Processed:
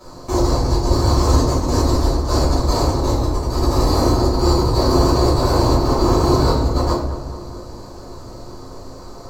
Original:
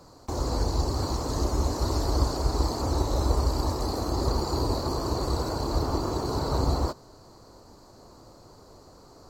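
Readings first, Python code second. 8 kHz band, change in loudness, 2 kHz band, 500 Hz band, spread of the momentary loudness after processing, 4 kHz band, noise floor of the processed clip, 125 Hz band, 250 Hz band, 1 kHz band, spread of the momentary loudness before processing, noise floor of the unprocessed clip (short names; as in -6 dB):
+9.0 dB, +10.5 dB, +11.0 dB, +11.5 dB, 21 LU, +9.5 dB, -36 dBFS, +10.5 dB, +12.0 dB, +10.5 dB, 3 LU, -52 dBFS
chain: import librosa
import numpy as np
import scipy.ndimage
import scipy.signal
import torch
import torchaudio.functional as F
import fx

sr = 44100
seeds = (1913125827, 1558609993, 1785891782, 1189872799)

p1 = fx.notch(x, sr, hz=1400.0, q=29.0)
p2 = fx.over_compress(p1, sr, threshold_db=-28.0, ratio=-0.5)
p3 = p2 + fx.echo_filtered(p2, sr, ms=214, feedback_pct=60, hz=1900.0, wet_db=-11.0, dry=0)
y = fx.room_shoebox(p3, sr, seeds[0], volume_m3=110.0, walls='mixed', distance_m=2.8)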